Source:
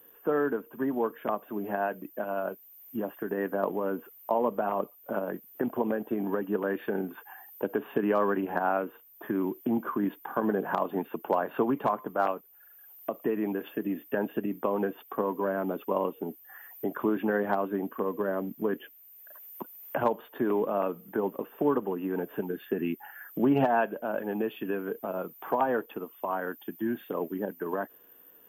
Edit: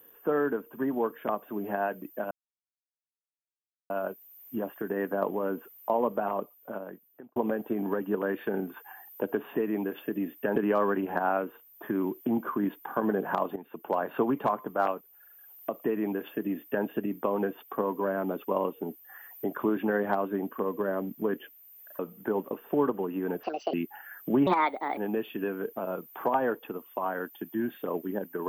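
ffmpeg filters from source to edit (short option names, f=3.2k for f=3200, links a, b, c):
-filter_complex "[0:a]asplit=11[a][b][c][d][e][f][g][h][i][j][k];[a]atrim=end=2.31,asetpts=PTS-STARTPTS,afade=t=out:st=2.306:d=0.004:c=hsin,apad=pad_dur=1.59[l];[b]atrim=start=2.31:end=5.77,asetpts=PTS-STARTPTS,afade=t=in:d=0.004:c=hsin,afade=t=out:st=2.25:d=1.21[m];[c]atrim=start=5.77:end=7.962,asetpts=PTS-STARTPTS,afade=t=in:d=0.004:c=hsin[n];[d]atrim=start=13.238:end=14.252[o];[e]atrim=start=7.958:end=10.96,asetpts=PTS-STARTPTS,afade=t=out:st=2.998:d=0.004:c=hsin:silence=0.158489[p];[f]atrim=start=10.96:end=19.392,asetpts=PTS-STARTPTS,afade=t=in:d=0.51:silence=0.158489[q];[g]atrim=start=20.868:end=22.314[r];[h]atrim=start=22.31:end=22.83,asetpts=PTS-STARTPTS,asetrate=74970,aresample=44100,atrim=end_sample=13489,asetpts=PTS-STARTPTS[s];[i]atrim=start=22.826:end=23.564[t];[j]atrim=start=23.56:end=24.24,asetpts=PTS-STARTPTS,asetrate=59094,aresample=44100,atrim=end_sample=22379,asetpts=PTS-STARTPTS[u];[k]atrim=start=24.236[v];[l][m][n]concat=n=3:v=0:a=1[w];[w][o]acrossfade=d=0.004:c1=hsin:c2=hsin[x];[p][q]concat=n=2:v=0:a=1[y];[x][y]acrossfade=d=0.004:c1=hsin:c2=hsin[z];[z][r]acrossfade=d=0.004:c1=hsin:c2=hsin[aa];[aa][s]acrossfade=d=0.004:c1=hsin:c2=hsin[ab];[ab][t]acrossfade=d=0.004:c1=hsin:c2=hsin[ac];[ac][u]acrossfade=d=0.004:c1=hsin:c2=hsin[ad];[ad][v]acrossfade=d=0.004:c1=hsin:c2=hsin"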